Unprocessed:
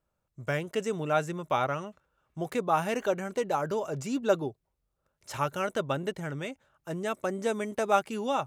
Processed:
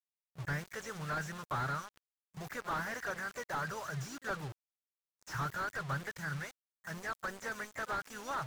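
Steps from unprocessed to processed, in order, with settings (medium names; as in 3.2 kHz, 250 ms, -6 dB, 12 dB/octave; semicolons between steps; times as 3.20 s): FFT filter 130 Hz 0 dB, 210 Hz -19 dB, 320 Hz -20 dB, 680 Hz -14 dB, 1.6 kHz +7 dB, 2.5 kHz -14 dB, 3.6 kHz -11 dB, 5.6 kHz +8 dB, 9.2 kHz -5 dB, 13 kHz +10 dB; bit crusher 8-bit; harmony voices +3 st -12 dB; slew-rate limiter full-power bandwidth 22 Hz; trim +1 dB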